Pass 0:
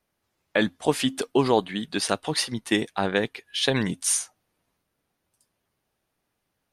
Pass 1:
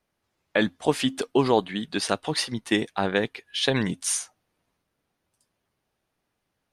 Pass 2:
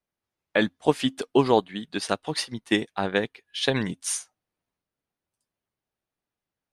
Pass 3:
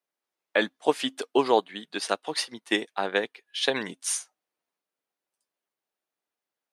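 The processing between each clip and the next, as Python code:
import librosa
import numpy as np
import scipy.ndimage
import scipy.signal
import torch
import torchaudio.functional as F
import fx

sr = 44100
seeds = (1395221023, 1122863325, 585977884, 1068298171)

y1 = fx.high_shelf(x, sr, hz=11000.0, db=-9.0)
y2 = fx.upward_expand(y1, sr, threshold_db=-43.0, expansion=1.5)
y2 = y2 * 10.0 ** (2.0 / 20.0)
y3 = scipy.signal.sosfilt(scipy.signal.butter(2, 360.0, 'highpass', fs=sr, output='sos'), y2)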